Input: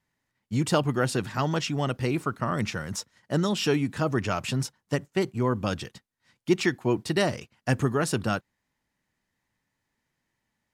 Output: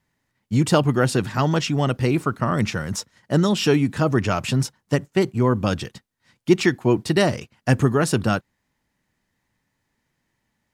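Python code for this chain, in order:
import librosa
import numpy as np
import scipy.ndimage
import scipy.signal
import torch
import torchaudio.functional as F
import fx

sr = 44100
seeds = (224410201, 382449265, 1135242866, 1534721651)

y = fx.low_shelf(x, sr, hz=460.0, db=3.0)
y = F.gain(torch.from_numpy(y), 4.5).numpy()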